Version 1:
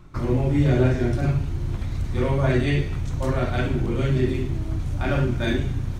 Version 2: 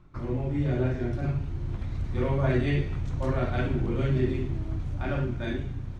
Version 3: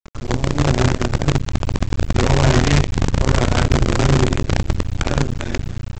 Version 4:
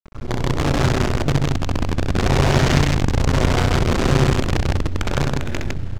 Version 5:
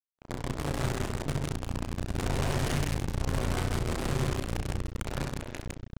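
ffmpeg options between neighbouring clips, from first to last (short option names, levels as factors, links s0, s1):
-af "aemphasis=mode=reproduction:type=50fm,dynaudnorm=f=270:g=11:m=1.78,volume=0.376"
-af "lowshelf=f=160:g=8.5,aresample=16000,acrusher=bits=4:dc=4:mix=0:aa=0.000001,aresample=44100,volume=1.78"
-filter_complex "[0:a]adynamicsmooth=sensitivity=7.5:basefreq=1100,aeval=exprs='clip(val(0),-1,0.15)':c=same,asplit=2[s0][s1];[s1]aecho=0:1:64.14|157.4:0.631|0.891[s2];[s0][s2]amix=inputs=2:normalize=0,volume=0.668"
-filter_complex "[0:a]aresample=16000,asoftclip=type=tanh:threshold=0.178,aresample=44100,acrusher=bits=2:mix=0:aa=0.5,asplit=2[s0][s1];[s1]adelay=34,volume=0.299[s2];[s0][s2]amix=inputs=2:normalize=0,volume=0.473"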